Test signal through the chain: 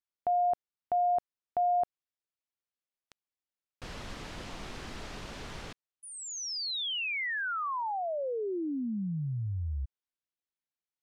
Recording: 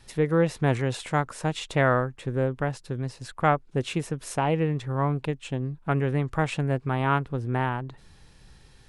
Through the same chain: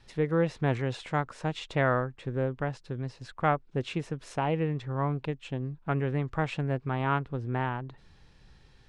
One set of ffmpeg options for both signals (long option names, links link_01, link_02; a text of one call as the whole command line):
ffmpeg -i in.wav -af "lowpass=5200,volume=-4dB" out.wav